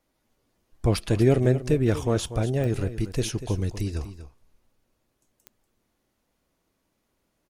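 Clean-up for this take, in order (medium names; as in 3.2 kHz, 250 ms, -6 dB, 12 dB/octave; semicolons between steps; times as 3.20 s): de-click; inverse comb 240 ms -12.5 dB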